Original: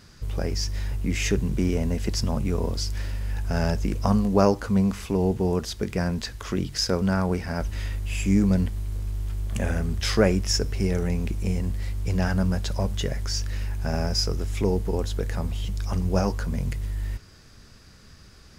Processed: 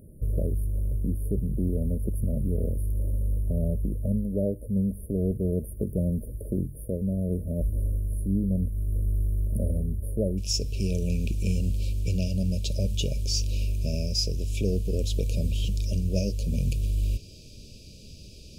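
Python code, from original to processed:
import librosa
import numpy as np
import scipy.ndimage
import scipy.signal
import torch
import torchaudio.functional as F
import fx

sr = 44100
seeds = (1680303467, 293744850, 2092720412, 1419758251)

y = fx.dynamic_eq(x, sr, hz=360.0, q=0.75, threshold_db=-35.0, ratio=4.0, max_db=-6)
y = fx.rider(y, sr, range_db=4, speed_s=0.5)
y = fx.brickwall_bandstop(y, sr, low_hz=650.0, high_hz=fx.steps((0.0, 9200.0), (10.37, 2300.0)))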